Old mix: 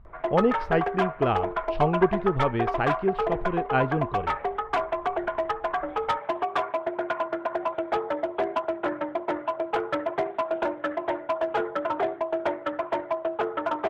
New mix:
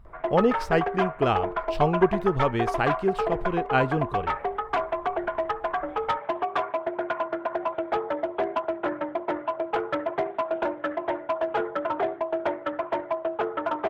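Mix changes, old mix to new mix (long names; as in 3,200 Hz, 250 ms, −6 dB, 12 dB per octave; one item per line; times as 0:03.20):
speech: remove high-frequency loss of the air 330 metres
master: add high-shelf EQ 6,900 Hz −8.5 dB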